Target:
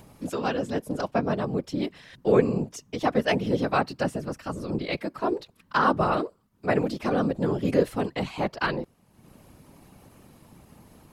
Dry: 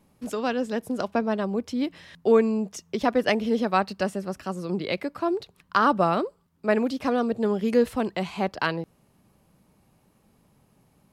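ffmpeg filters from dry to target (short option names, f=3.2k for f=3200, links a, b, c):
-af "acompressor=mode=upward:threshold=-39dB:ratio=2.5,afftfilt=real='hypot(re,im)*cos(2*PI*random(0))':imag='hypot(re,im)*sin(2*PI*random(1))':win_size=512:overlap=0.75,volume=5dB"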